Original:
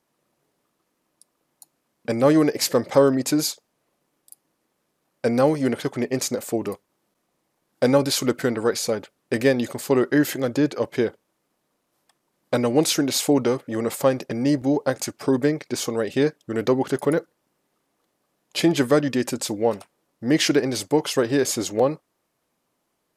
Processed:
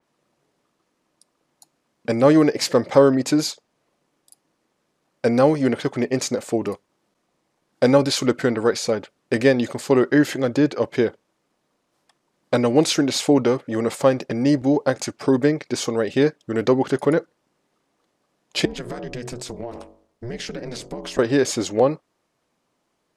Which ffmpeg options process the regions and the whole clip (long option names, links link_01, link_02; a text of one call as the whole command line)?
ffmpeg -i in.wav -filter_complex "[0:a]asettb=1/sr,asplit=3[link_01][link_02][link_03];[link_01]atrim=end=18.654[link_04];[link_02]atrim=start=18.65:end=21.19,asetpts=PTS-STARTPTS,afade=type=in:duration=0.004:curve=qsin,afade=type=out:start_time=2.536:duration=0.004:curve=qsin,bandreject=frequency=49.65:width_type=h:width=4,bandreject=frequency=99.3:width_type=h:width=4,bandreject=frequency=148.95:width_type=h:width=4,bandreject=frequency=198.6:width_type=h:width=4,bandreject=frequency=248.25:width_type=h:width=4,bandreject=frequency=297.9:width_type=h:width=4,bandreject=frequency=347.55:width_type=h:width=4,bandreject=frequency=397.2:width_type=h:width=4,bandreject=frequency=446.85:width_type=h:width=4,bandreject=frequency=496.5:width_type=h:width=4,bandreject=frequency=546.15:width_type=h:width=4,bandreject=frequency=595.8:width_type=h:width=4,bandreject=frequency=645.45:width_type=h:width=4,bandreject=frequency=695.1:width_type=h:width=4,bandreject=frequency=744.75:width_type=h:width=4,bandreject=frequency=794.4:width_type=h:width=4,bandreject=frequency=844.05:width_type=h:width=4,bandreject=frequency=893.7:width_type=h:width=4,bandreject=frequency=943.35:width_type=h:width=4,bandreject=frequency=993:width_type=h:width=4,bandreject=frequency=1042.65:width_type=h:width=4,bandreject=frequency=1092.3:width_type=h:width=4,bandreject=frequency=1141.95:width_type=h:width=4,aeval=exprs='val(0)*sin(2*PI*120*n/s)':channel_layout=same,acompressor=threshold=-29dB:ratio=10:attack=3.2:release=140:knee=1:detection=peak[link_05];[link_03]atrim=start=21.186[link_06];[link_04][link_05]acrossfade=duration=0.004:curve1=hsin:curve2=qsin[link_07];[link_07][link_06]acrossfade=duration=0.004:curve1=qsin:curve2=hsin,lowpass=8000,adynamicequalizer=threshold=0.01:dfrequency=4400:dqfactor=0.7:tfrequency=4400:tqfactor=0.7:attack=5:release=100:ratio=0.375:range=2:mode=cutabove:tftype=highshelf,volume=2.5dB" out.wav